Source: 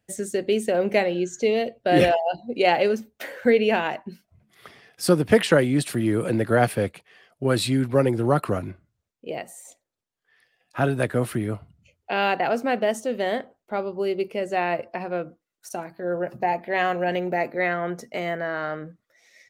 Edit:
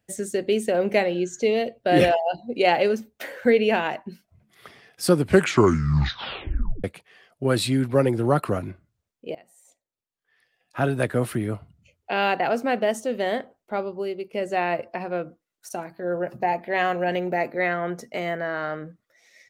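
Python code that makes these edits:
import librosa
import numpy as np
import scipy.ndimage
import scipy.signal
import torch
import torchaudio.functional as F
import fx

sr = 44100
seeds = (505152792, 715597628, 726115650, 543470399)

y = fx.edit(x, sr, fx.tape_stop(start_s=5.13, length_s=1.71),
    fx.fade_in_from(start_s=9.35, length_s=1.67, floor_db=-20.0),
    fx.fade_out_to(start_s=13.79, length_s=0.54, floor_db=-10.5), tone=tone)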